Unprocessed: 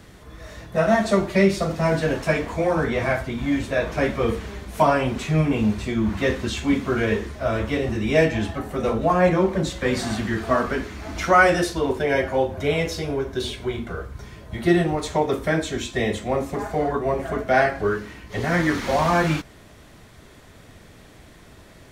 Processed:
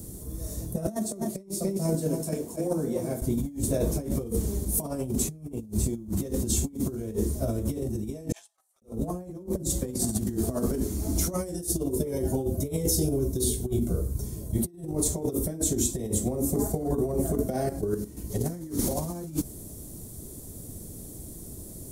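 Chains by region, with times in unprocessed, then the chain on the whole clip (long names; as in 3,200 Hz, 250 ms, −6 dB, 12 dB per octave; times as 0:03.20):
0:00.87–0:03.22: high-pass filter 160 Hz + noise gate −20 dBFS, range −9 dB + single-tap delay 275 ms −9 dB
0:08.32–0:08.82: Bessel high-pass filter 1,400 Hz, order 8 + noise gate −36 dBFS, range −28 dB + high-frequency loss of the air 56 metres
0:11.30–0:14.07: double-tracking delay 16 ms −11.5 dB + phaser whose notches keep moving one way falling 1.5 Hz
0:17.56–0:18.17: output level in coarse steps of 12 dB + one half of a high-frequency compander decoder only
whole clip: drawn EQ curve 350 Hz 0 dB, 1,700 Hz −26 dB, 2,800 Hz −22 dB, 10,000 Hz +14 dB; compressor whose output falls as the input rises −29 dBFS, ratio −0.5; level that may rise only so fast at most 300 dB per second; level +1.5 dB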